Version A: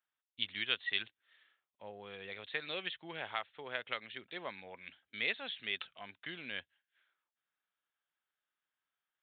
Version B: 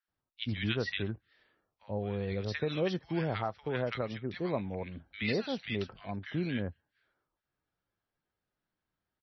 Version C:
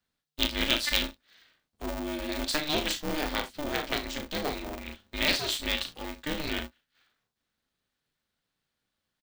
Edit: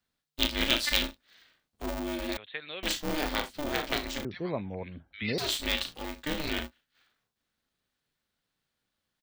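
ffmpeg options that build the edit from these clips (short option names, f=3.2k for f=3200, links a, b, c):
-filter_complex "[2:a]asplit=3[a][b][c];[a]atrim=end=2.372[d];[0:a]atrim=start=2.368:end=2.832[e];[b]atrim=start=2.828:end=4.252[f];[1:a]atrim=start=4.248:end=5.382[g];[c]atrim=start=5.378[h];[d][e]acrossfade=d=0.004:c1=hsin:c2=hsin[i];[i][f]acrossfade=d=0.004:c1=hsin:c2=hsin[j];[j][g]acrossfade=d=0.004:c1=hsin:c2=hsin[k];[k][h]acrossfade=d=0.004:c1=hsin:c2=hsin"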